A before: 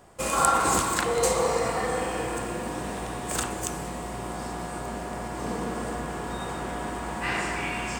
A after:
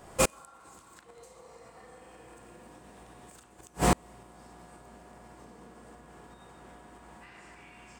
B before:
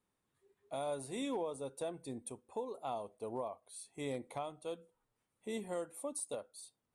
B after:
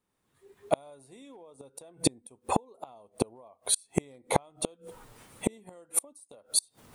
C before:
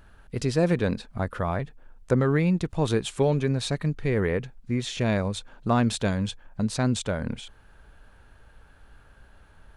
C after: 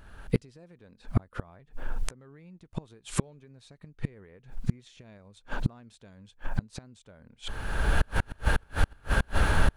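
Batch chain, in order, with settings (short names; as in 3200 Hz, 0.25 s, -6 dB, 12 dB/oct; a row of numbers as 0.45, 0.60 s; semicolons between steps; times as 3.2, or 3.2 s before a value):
recorder AGC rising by 29 dB/s; flipped gate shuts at -12 dBFS, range -36 dB; gain +1 dB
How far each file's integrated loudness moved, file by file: 0.0, +11.0, -6.5 LU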